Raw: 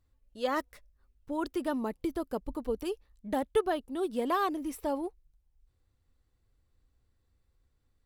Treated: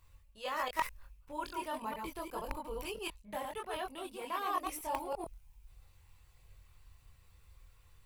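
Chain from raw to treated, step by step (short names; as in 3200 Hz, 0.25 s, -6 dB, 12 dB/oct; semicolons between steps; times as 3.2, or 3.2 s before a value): reverse delay 0.114 s, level -3 dB; high shelf 5500 Hz +11.5 dB; reverse; compressor 10:1, threshold -43 dBFS, peak gain reduction 22 dB; reverse; chorus voices 6, 0.4 Hz, delay 23 ms, depth 1.1 ms; in parallel at -6 dB: requantised 6-bit, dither none; on the sum: fifteen-band EQ 250 Hz -9 dB, 1000 Hz +9 dB, 2500 Hz +11 dB; gain +8.5 dB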